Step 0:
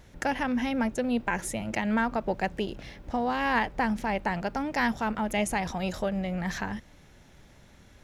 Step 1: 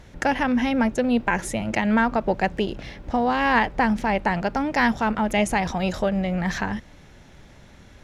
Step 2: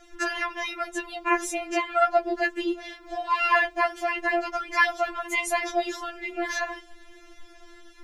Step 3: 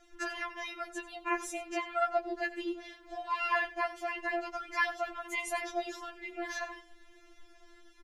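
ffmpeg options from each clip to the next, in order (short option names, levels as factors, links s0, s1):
-af "highshelf=f=10000:g=-11,volume=2.11"
-af "afftfilt=real='re*4*eq(mod(b,16),0)':imag='im*4*eq(mod(b,16),0)':win_size=2048:overlap=0.75,volume=1.33"
-af "aecho=1:1:92:0.15,volume=0.355"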